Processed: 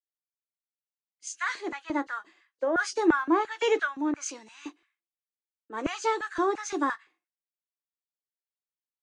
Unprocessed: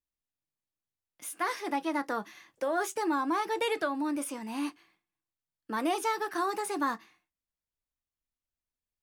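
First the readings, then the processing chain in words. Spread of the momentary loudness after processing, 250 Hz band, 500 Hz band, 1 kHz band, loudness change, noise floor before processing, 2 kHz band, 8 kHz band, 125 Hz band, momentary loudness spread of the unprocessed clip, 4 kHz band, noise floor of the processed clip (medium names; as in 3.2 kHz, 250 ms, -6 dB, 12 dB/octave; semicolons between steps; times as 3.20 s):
16 LU, +3.5 dB, +4.0 dB, +0.5 dB, +3.5 dB, under -85 dBFS, +5.0 dB, +2.5 dB, no reading, 7 LU, +1.0 dB, under -85 dBFS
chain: knee-point frequency compression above 2.8 kHz 1.5:1; LFO high-pass square 2.9 Hz 350–1500 Hz; three bands expanded up and down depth 100%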